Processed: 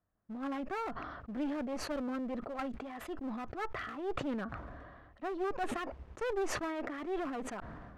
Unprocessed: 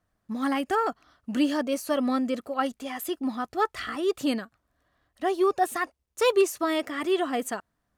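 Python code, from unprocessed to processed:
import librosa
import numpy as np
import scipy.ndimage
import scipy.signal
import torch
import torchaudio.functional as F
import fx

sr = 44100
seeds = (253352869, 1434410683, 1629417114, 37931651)

y = scipy.signal.sosfilt(scipy.signal.butter(2, 1600.0, 'lowpass', fs=sr, output='sos'), x)
y = fx.clip_asym(y, sr, top_db=-34.0, bottom_db=-16.5)
y = fx.sustainer(y, sr, db_per_s=31.0)
y = y * 10.0 ** (-8.5 / 20.0)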